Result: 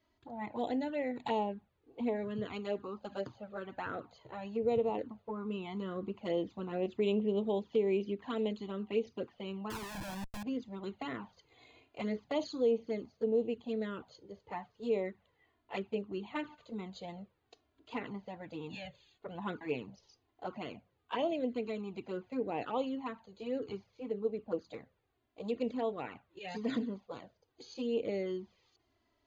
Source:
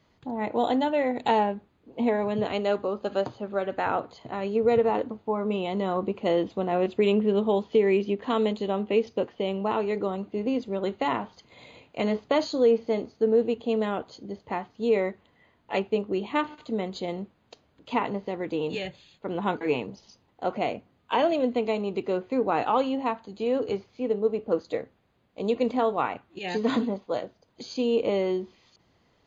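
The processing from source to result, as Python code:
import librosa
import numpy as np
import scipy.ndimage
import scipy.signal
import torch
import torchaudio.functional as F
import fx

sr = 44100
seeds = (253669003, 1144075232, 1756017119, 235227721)

y = fx.schmitt(x, sr, flips_db=-37.5, at=(9.7, 10.43))
y = fx.env_flanger(y, sr, rest_ms=3.1, full_db=-19.0)
y = F.gain(torch.from_numpy(y), -8.0).numpy()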